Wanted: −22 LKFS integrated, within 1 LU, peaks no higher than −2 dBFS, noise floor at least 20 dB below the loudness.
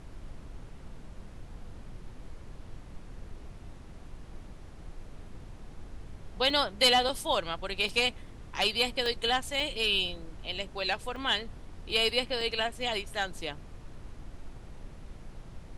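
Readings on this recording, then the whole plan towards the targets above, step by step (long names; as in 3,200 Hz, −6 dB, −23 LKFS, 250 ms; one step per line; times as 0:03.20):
number of dropouts 7; longest dropout 2.1 ms; background noise floor −48 dBFS; target noise floor −49 dBFS; integrated loudness −29.0 LKFS; sample peak −10.5 dBFS; target loudness −22.0 LKFS
→ repair the gap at 0:06.50/0:07.09/0:07.89/0:09.06/0:09.60/0:11.16/0:12.41, 2.1 ms
noise reduction from a noise print 6 dB
level +7 dB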